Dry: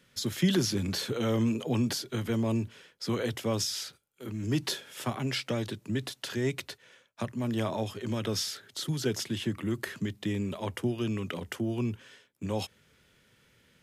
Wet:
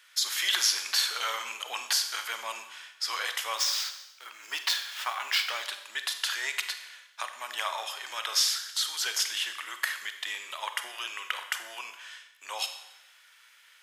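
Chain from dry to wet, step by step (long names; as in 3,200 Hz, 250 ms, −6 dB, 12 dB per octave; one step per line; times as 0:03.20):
0:03.56–0:05.63: running median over 5 samples
high-pass filter 960 Hz 24 dB per octave
four-comb reverb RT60 0.91 s, combs from 31 ms, DRR 7.5 dB
level +8 dB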